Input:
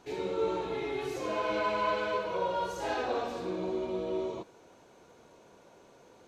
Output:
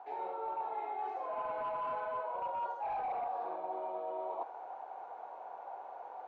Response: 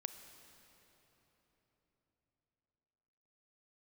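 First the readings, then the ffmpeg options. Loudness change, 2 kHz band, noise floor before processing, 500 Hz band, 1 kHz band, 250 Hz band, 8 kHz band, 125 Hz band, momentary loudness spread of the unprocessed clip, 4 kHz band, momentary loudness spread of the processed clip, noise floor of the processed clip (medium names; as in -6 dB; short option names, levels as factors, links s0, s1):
-7.0 dB, -12.5 dB, -58 dBFS, -9.0 dB, -0.5 dB, -18.5 dB, under -25 dB, under -20 dB, 5 LU, under -20 dB, 10 LU, -49 dBFS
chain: -af "highpass=f=780:t=q:w=8.8,asoftclip=type=hard:threshold=0.075,lowpass=1400,areverse,acompressor=threshold=0.00794:ratio=6,areverse,volume=1.78"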